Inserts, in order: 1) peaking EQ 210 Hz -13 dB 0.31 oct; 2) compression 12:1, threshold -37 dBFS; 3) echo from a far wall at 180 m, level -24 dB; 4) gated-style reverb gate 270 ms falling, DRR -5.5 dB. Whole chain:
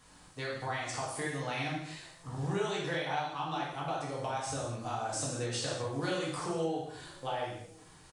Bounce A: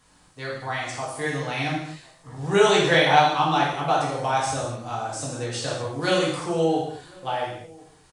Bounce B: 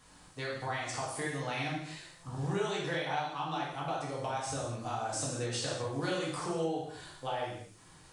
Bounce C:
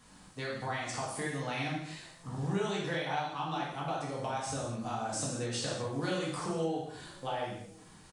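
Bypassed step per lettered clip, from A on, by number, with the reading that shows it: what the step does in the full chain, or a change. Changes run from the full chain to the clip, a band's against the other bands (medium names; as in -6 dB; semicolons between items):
2, mean gain reduction 8.0 dB; 3, momentary loudness spread change -1 LU; 1, 250 Hz band +2.0 dB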